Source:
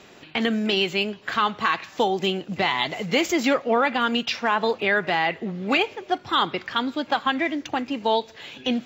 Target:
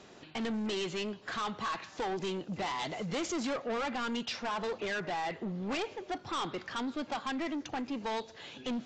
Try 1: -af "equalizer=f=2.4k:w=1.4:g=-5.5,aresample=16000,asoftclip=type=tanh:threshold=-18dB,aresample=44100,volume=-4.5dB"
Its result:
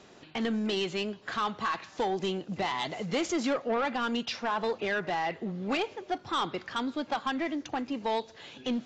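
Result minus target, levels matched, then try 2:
soft clip: distortion -7 dB
-af "equalizer=f=2.4k:w=1.4:g=-5.5,aresample=16000,asoftclip=type=tanh:threshold=-26.5dB,aresample=44100,volume=-4.5dB"

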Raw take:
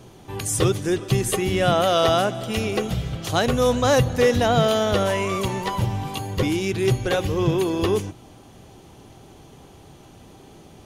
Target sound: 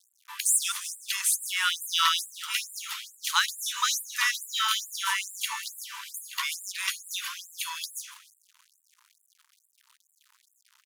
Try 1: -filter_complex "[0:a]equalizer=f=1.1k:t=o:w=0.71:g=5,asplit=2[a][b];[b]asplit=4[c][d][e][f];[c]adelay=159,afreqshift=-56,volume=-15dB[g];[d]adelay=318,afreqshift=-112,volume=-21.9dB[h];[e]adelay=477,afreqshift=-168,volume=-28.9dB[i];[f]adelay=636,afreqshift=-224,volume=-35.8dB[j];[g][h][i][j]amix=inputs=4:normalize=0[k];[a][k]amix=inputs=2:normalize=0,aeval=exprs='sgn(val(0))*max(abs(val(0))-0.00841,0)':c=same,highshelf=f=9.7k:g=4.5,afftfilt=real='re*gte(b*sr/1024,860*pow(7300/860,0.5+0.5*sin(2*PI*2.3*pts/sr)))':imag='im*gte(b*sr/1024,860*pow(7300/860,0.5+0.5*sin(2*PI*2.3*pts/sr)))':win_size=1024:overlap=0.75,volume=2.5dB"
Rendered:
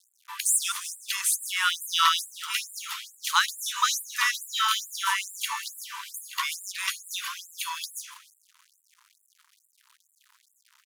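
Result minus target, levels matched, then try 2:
1000 Hz band +3.0 dB
-filter_complex "[0:a]asplit=2[a][b];[b]asplit=4[c][d][e][f];[c]adelay=159,afreqshift=-56,volume=-15dB[g];[d]adelay=318,afreqshift=-112,volume=-21.9dB[h];[e]adelay=477,afreqshift=-168,volume=-28.9dB[i];[f]adelay=636,afreqshift=-224,volume=-35.8dB[j];[g][h][i][j]amix=inputs=4:normalize=0[k];[a][k]amix=inputs=2:normalize=0,aeval=exprs='sgn(val(0))*max(abs(val(0))-0.00841,0)':c=same,highshelf=f=9.7k:g=4.5,afftfilt=real='re*gte(b*sr/1024,860*pow(7300/860,0.5+0.5*sin(2*PI*2.3*pts/sr)))':imag='im*gte(b*sr/1024,860*pow(7300/860,0.5+0.5*sin(2*PI*2.3*pts/sr)))':win_size=1024:overlap=0.75,volume=2.5dB"

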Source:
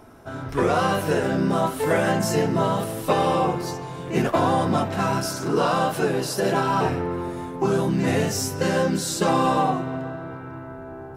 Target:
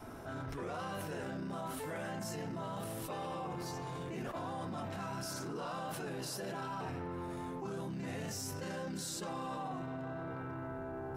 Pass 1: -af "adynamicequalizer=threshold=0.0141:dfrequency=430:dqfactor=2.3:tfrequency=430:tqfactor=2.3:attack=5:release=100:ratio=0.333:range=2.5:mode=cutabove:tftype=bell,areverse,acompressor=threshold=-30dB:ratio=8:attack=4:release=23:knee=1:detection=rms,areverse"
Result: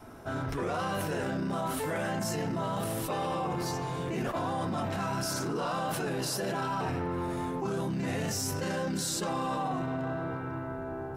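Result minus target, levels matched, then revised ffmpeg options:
compressor: peak gain reduction -9 dB
-af "adynamicequalizer=threshold=0.0141:dfrequency=430:dqfactor=2.3:tfrequency=430:tqfactor=2.3:attack=5:release=100:ratio=0.333:range=2.5:mode=cutabove:tftype=bell,areverse,acompressor=threshold=-40dB:ratio=8:attack=4:release=23:knee=1:detection=rms,areverse"

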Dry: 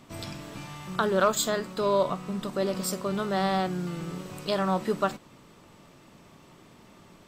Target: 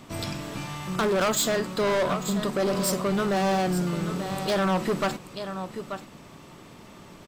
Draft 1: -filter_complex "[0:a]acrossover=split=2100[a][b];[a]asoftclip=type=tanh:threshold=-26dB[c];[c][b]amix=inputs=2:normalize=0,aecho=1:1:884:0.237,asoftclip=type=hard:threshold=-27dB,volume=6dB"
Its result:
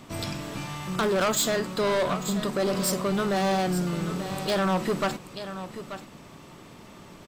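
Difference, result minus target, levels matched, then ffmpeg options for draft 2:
soft clip: distortion +8 dB
-filter_complex "[0:a]acrossover=split=2100[a][b];[a]asoftclip=type=tanh:threshold=-18.5dB[c];[c][b]amix=inputs=2:normalize=0,aecho=1:1:884:0.237,asoftclip=type=hard:threshold=-27dB,volume=6dB"

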